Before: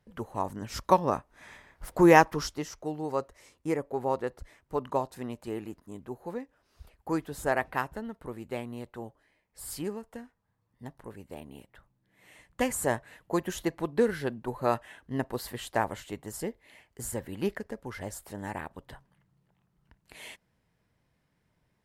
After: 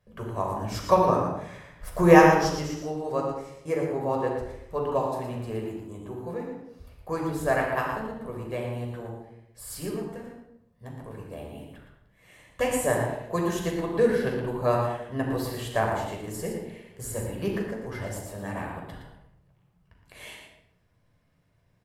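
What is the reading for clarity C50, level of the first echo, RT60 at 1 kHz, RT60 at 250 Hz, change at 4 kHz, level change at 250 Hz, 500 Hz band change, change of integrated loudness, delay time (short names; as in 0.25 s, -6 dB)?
2.0 dB, -7.0 dB, 0.70 s, 0.90 s, +2.5 dB, +3.0 dB, +5.0 dB, +4.0 dB, 0.116 s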